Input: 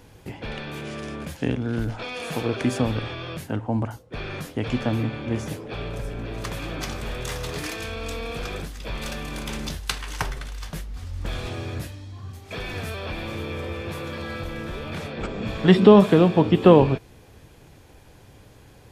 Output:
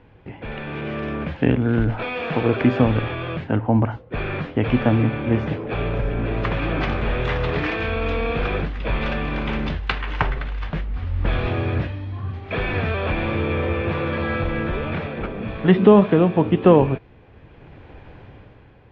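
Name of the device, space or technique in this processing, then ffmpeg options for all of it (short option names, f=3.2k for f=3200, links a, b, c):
action camera in a waterproof case: -af "lowpass=f=2.8k:w=0.5412,lowpass=f=2.8k:w=1.3066,dynaudnorm=f=130:g=11:m=10dB,volume=-1dB" -ar 44100 -c:a aac -b:a 64k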